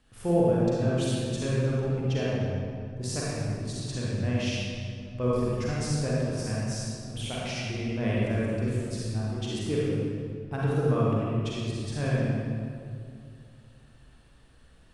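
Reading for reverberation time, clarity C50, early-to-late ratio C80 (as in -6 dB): 2.3 s, -5.0 dB, -2.0 dB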